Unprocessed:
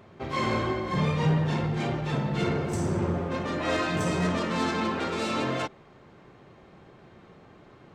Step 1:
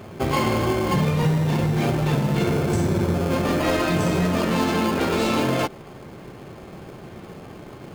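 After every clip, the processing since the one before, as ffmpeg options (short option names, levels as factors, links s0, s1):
-filter_complex "[0:a]asplit=2[s0][s1];[s1]acrusher=samples=23:mix=1:aa=0.000001,volume=0.668[s2];[s0][s2]amix=inputs=2:normalize=0,acompressor=threshold=0.0447:ratio=6,volume=2.82"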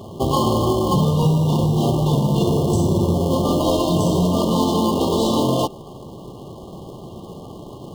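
-af "afftfilt=real='re*(1-between(b*sr/4096,1200,2800))':imag='im*(1-between(b*sr/4096,1200,2800))':win_size=4096:overlap=0.75,volume=1.5"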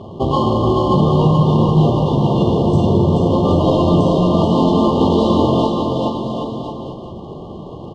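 -filter_complex "[0:a]lowpass=3000,asplit=2[s0][s1];[s1]aecho=0:1:430|774|1049|1269|1445:0.631|0.398|0.251|0.158|0.1[s2];[s0][s2]amix=inputs=2:normalize=0,volume=1.33"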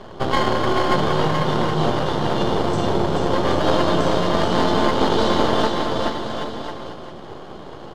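-filter_complex "[0:a]highpass=f=86:w=0.5412,highpass=f=86:w=1.3066,bass=f=250:g=-14,treble=f=4000:g=2,acrossover=split=150|2600[s0][s1][s2];[s1]aeval=exprs='max(val(0),0)':c=same[s3];[s0][s3][s2]amix=inputs=3:normalize=0,volume=1.41"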